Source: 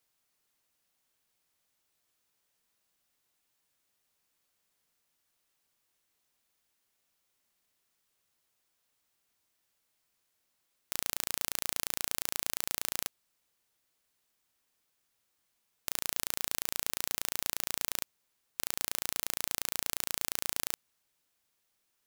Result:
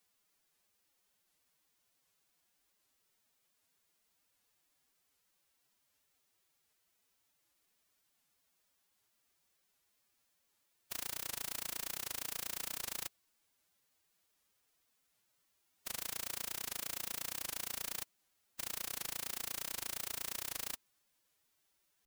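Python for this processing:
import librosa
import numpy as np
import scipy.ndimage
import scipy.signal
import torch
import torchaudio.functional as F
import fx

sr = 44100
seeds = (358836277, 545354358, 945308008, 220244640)

y = 10.0 ** (-9.0 / 20.0) * np.tanh(x / 10.0 ** (-9.0 / 20.0))
y = fx.pitch_keep_formants(y, sr, semitones=9.0)
y = fx.record_warp(y, sr, rpm=78.0, depth_cents=250.0)
y = F.gain(torch.from_numpy(y), 3.0).numpy()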